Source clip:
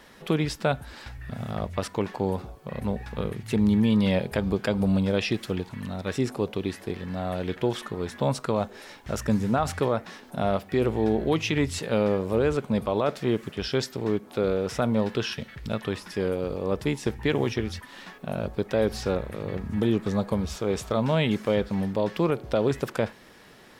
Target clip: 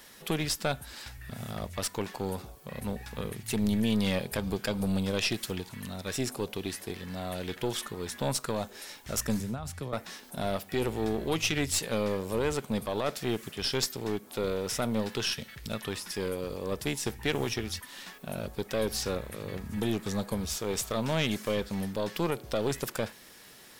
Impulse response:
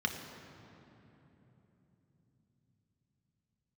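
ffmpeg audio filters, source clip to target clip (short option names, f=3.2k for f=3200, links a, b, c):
-filter_complex "[0:a]crystalizer=i=4:c=0,asettb=1/sr,asplit=3[a][b][c];[a]atrim=end=9.404[d];[b]atrim=start=9.4:end=9.93,asetpts=PTS-STARTPTS,afade=t=in:d=0.004:c=qsin,afade=t=out:st=0.526:d=0.004:c=qsin,acrossover=split=190[e][f];[f]acompressor=threshold=-35dB:ratio=4[g];[e][g]amix=inputs=2:normalize=0[h];[c]atrim=start=9.926[i];[d][h]acrossfade=d=0.004:c1=hsin:c2=qsin[j];[j][i]acrossfade=d=0.004:c1=qsin:c2=hsin,aeval=exprs='(tanh(4.47*val(0)+0.55)-tanh(0.55))/4.47':c=same,volume=-3.5dB"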